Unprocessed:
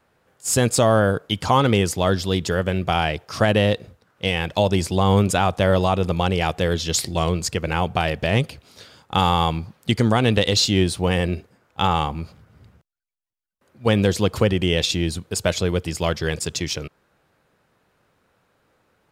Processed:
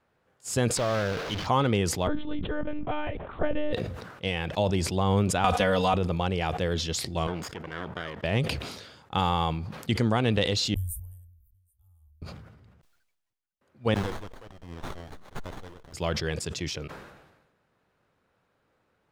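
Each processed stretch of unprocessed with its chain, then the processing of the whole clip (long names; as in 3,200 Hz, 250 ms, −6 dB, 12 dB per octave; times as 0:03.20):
0:00.77–0:01.47: linear delta modulator 32 kbit/s, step −17 dBFS + bit-depth reduction 6 bits, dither none + tube saturation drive 13 dB, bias 0.65
0:02.07–0:03.73: low-pass filter 1,100 Hz 6 dB per octave + one-pitch LPC vocoder at 8 kHz 300 Hz
0:05.44–0:05.94: tilt shelving filter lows −3.5 dB, about 850 Hz + comb filter 4.1 ms, depth 93% + multiband upward and downward compressor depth 100%
0:07.27–0:08.24: lower of the sound and its delayed copy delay 0.58 ms + high-pass filter 590 Hz 6 dB per octave + high-shelf EQ 2,200 Hz −12 dB
0:10.74–0:12.22: inverse Chebyshev band-stop filter 150–5,100 Hz, stop band 60 dB + single-tap delay 778 ms −11 dB
0:13.94–0:15.94: first difference + windowed peak hold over 17 samples
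whole clip: high-shelf EQ 6,600 Hz −8.5 dB; level that may fall only so fast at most 50 dB per second; level −7 dB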